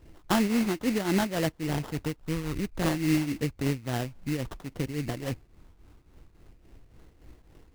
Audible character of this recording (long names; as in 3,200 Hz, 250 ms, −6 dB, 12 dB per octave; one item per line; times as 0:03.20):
phaser sweep stages 12, 0.3 Hz, lowest notch 760–2,200 Hz
aliases and images of a low sample rate 2,400 Hz, jitter 20%
tremolo triangle 3.6 Hz, depth 75%